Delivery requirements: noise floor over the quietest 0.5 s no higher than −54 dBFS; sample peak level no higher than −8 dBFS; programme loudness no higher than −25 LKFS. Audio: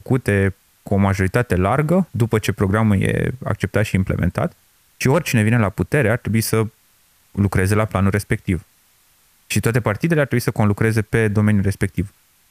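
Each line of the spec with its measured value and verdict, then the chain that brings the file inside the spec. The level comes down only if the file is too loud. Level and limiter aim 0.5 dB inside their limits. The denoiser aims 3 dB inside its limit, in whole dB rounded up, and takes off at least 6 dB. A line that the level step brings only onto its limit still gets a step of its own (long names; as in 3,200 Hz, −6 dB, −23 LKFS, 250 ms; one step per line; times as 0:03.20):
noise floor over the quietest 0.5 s −57 dBFS: in spec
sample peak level −3.5 dBFS: out of spec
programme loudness −19.0 LKFS: out of spec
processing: level −6.5 dB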